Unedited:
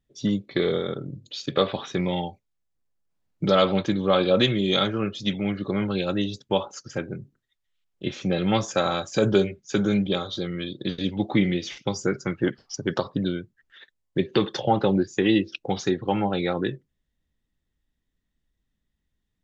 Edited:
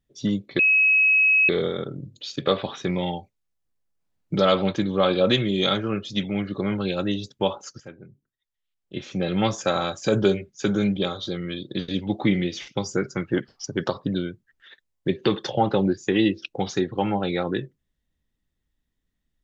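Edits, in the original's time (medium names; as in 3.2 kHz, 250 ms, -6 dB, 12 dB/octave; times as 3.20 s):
0.59 s: add tone 2.56 kHz -14.5 dBFS 0.90 s
6.90–8.47 s: fade in quadratic, from -12.5 dB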